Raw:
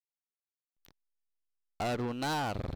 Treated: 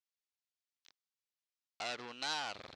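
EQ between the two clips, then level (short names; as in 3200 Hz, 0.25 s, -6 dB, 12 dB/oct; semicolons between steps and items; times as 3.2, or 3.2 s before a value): band-pass 6200 Hz, Q 0.89; air absorption 56 m; high shelf 6800 Hz -11 dB; +9.0 dB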